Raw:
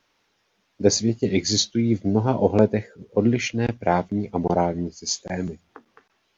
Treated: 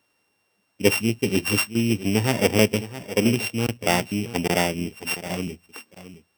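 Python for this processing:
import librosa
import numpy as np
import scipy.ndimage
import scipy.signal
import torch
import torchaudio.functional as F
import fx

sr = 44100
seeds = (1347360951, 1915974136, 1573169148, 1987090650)

y = np.r_[np.sort(x[:len(x) // 16 * 16].reshape(-1, 16), axis=1).ravel(), x[len(x) // 16 * 16:]]
y = scipy.signal.sosfilt(scipy.signal.butter(2, 59.0, 'highpass', fs=sr, output='sos'), y)
y = y + 10.0 ** (-14.0 / 20.0) * np.pad(y, (int(667 * sr / 1000.0), 0))[:len(y)]
y = F.gain(torch.from_numpy(y), -1.0).numpy()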